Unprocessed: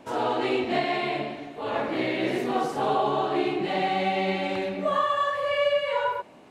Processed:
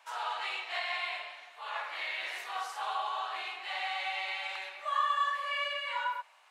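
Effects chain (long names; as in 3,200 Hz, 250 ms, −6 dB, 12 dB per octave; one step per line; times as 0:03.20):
high-pass filter 970 Hz 24 dB per octave
level −3 dB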